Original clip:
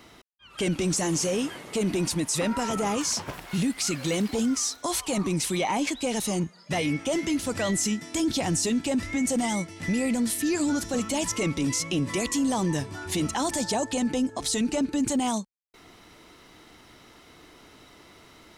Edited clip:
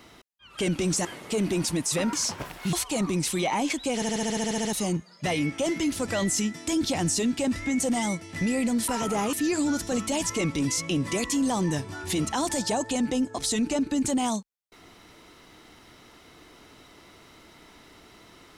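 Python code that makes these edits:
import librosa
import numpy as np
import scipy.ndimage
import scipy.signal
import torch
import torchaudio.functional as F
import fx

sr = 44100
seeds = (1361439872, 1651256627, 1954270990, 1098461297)

y = fx.edit(x, sr, fx.cut(start_s=1.05, length_s=0.43),
    fx.move(start_s=2.56, length_s=0.45, to_s=10.35),
    fx.cut(start_s=3.61, length_s=1.29),
    fx.stutter(start_s=6.12, slice_s=0.07, count=11), tone=tone)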